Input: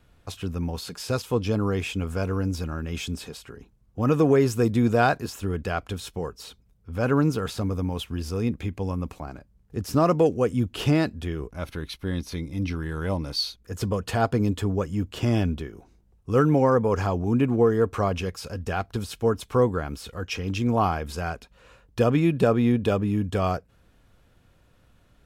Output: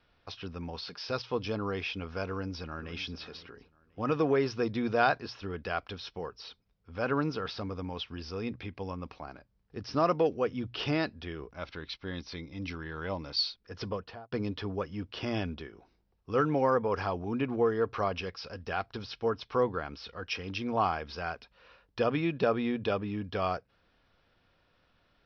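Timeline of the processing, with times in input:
0:02.26–0:02.94: delay throw 520 ms, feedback 25%, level −15.5 dB
0:13.86–0:14.32: fade out and dull
whole clip: Butterworth low-pass 5,600 Hz 96 dB per octave; low-shelf EQ 360 Hz −11 dB; mains-hum notches 60/120 Hz; level −2.5 dB

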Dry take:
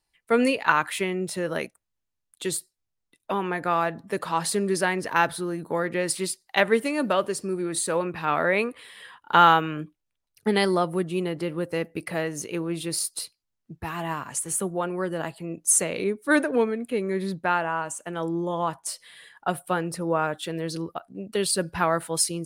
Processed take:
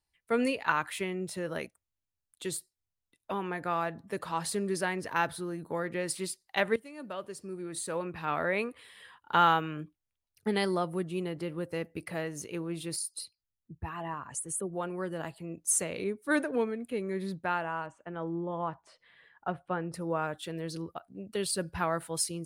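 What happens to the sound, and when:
0:06.76–0:08.24: fade in linear, from −16.5 dB
0:12.96–0:14.73: spectral envelope exaggerated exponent 1.5
0:17.86–0:19.94: low-pass filter 2,100 Hz
whole clip: parametric band 76 Hz +8.5 dB 1.2 octaves; level −7.5 dB

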